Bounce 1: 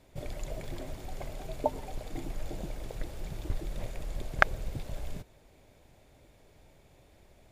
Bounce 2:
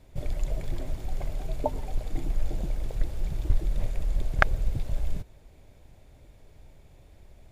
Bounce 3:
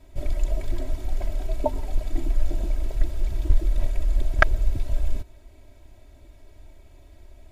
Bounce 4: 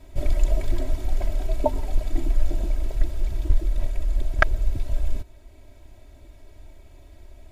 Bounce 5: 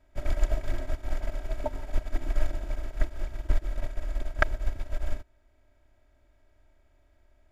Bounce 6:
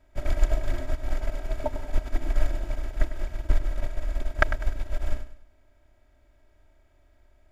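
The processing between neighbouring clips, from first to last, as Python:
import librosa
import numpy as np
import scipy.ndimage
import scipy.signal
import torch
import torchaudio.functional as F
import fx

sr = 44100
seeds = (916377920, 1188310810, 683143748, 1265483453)

y1 = fx.low_shelf(x, sr, hz=120.0, db=11.5)
y2 = y1 + 0.92 * np.pad(y1, (int(3.1 * sr / 1000.0), 0))[:len(y1)]
y3 = fx.rider(y2, sr, range_db=10, speed_s=2.0)
y4 = fx.bin_compress(y3, sr, power=0.6)
y4 = fx.upward_expand(y4, sr, threshold_db=-28.0, expansion=2.5)
y4 = F.gain(torch.from_numpy(y4), -4.0).numpy()
y5 = fx.echo_feedback(y4, sr, ms=100, feedback_pct=36, wet_db=-12.0)
y5 = F.gain(torch.from_numpy(y5), 2.5).numpy()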